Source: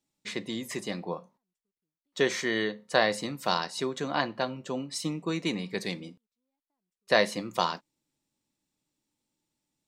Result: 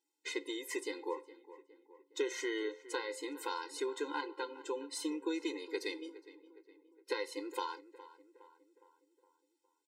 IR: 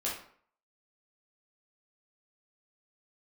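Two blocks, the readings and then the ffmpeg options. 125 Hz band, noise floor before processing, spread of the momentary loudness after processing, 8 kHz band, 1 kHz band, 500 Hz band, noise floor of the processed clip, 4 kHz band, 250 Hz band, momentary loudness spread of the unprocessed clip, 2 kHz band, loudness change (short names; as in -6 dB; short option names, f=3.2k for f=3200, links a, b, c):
under -40 dB, under -85 dBFS, 19 LU, -6.5 dB, -10.5 dB, -8.5 dB, -81 dBFS, -11.0 dB, -8.0 dB, 12 LU, -11.5 dB, -9.5 dB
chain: -filter_complex "[0:a]acompressor=threshold=-31dB:ratio=4,asplit=2[a][b];[b]adelay=413,lowpass=f=2.1k:p=1,volume=-16dB,asplit=2[c][d];[d]adelay=413,lowpass=f=2.1k:p=1,volume=0.54,asplit=2[e][f];[f]adelay=413,lowpass=f=2.1k:p=1,volume=0.54,asplit=2[g][h];[h]adelay=413,lowpass=f=2.1k:p=1,volume=0.54,asplit=2[i][j];[j]adelay=413,lowpass=f=2.1k:p=1,volume=0.54[k];[a][c][e][g][i][k]amix=inputs=6:normalize=0,afftfilt=real='re*eq(mod(floor(b*sr/1024/270),2),1)':imag='im*eq(mod(floor(b*sr/1024/270),2),1)':win_size=1024:overlap=0.75"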